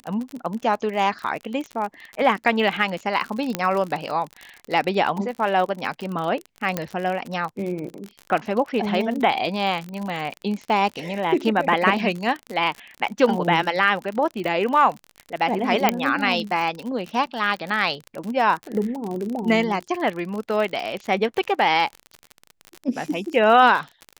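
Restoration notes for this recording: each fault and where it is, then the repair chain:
crackle 48/s -27 dBFS
3.55 pop -7 dBFS
6.77 pop -8 dBFS
15.89 pop -2 dBFS
17.26–17.27 gap 6.3 ms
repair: de-click; interpolate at 17.26, 6.3 ms

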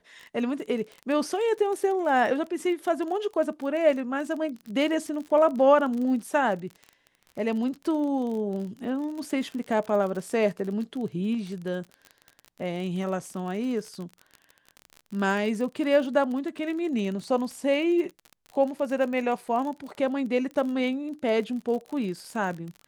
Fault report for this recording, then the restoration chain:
crackle 36/s -33 dBFS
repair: de-click

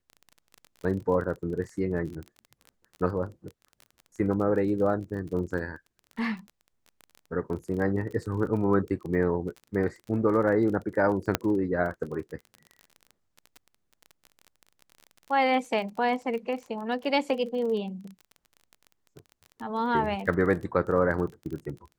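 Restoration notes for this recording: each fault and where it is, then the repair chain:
crackle 28/s -35 dBFS
11.35 pop -7 dBFS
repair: de-click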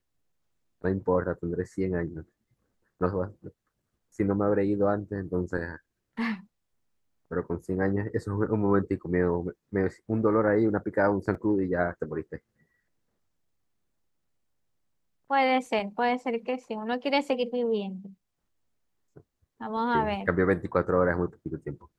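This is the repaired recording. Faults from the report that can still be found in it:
11.35 pop

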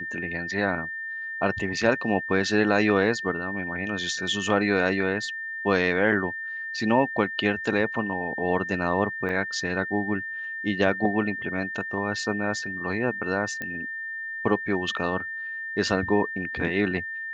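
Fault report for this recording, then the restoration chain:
tone 1800 Hz -31 dBFS
9.29 gap 3.2 ms
13.62 pop -18 dBFS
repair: de-click; notch 1800 Hz, Q 30; interpolate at 9.29, 3.2 ms

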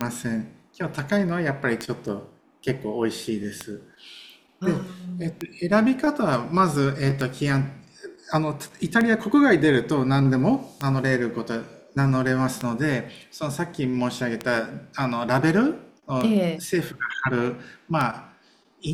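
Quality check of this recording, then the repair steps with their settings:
tick 33 1/3 rpm -11 dBFS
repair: de-click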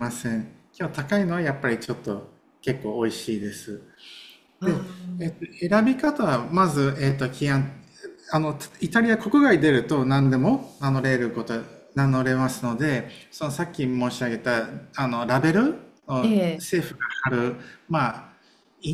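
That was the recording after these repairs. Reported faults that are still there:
none

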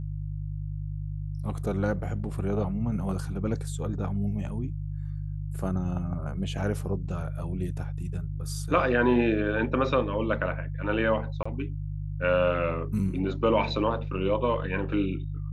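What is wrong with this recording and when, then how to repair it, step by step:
hum 50 Hz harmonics 3 -33 dBFS
11.43–11.46 gap 25 ms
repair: de-hum 50 Hz, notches 3; interpolate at 11.43, 25 ms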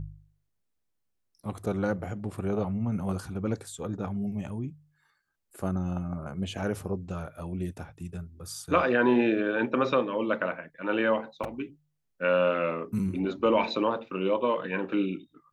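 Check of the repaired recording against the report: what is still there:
none

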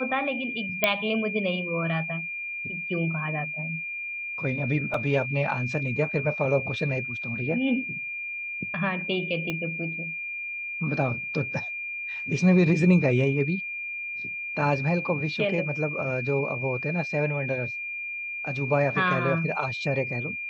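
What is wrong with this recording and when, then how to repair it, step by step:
tone 2400 Hz -31 dBFS
0.84 pop -6 dBFS
4.94 gap 3.2 ms
9.5 pop -16 dBFS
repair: de-click; notch 2400 Hz, Q 30; interpolate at 4.94, 3.2 ms

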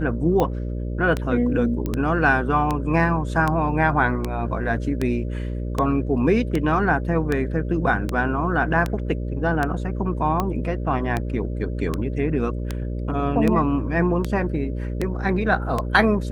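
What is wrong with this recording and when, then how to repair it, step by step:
buzz 60 Hz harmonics 10 -27 dBFS
tick 78 rpm -10 dBFS
1.86 pop -14 dBFS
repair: de-click; de-hum 60 Hz, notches 10

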